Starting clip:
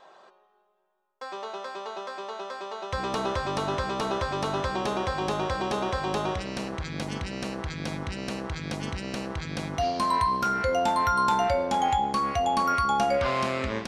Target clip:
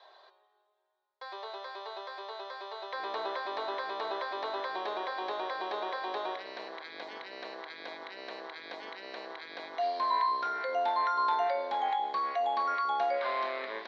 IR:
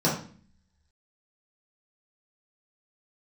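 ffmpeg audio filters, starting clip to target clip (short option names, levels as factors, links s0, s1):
-filter_complex "[0:a]acrossover=split=2600[s0][s1];[s1]acompressor=threshold=0.00251:ratio=4:attack=1:release=60[s2];[s0][s2]amix=inputs=2:normalize=0,highpass=f=480:w=0.5412,highpass=f=480:w=1.3066,equalizer=f=530:t=q:w=4:g=-7,equalizer=f=820:t=q:w=4:g=-5,equalizer=f=1300:t=q:w=4:g=-9,equalizer=f=2700:t=q:w=4:g=-9,equalizer=f=4000:t=q:w=4:g=9,lowpass=f=4500:w=0.5412,lowpass=f=4500:w=1.3066"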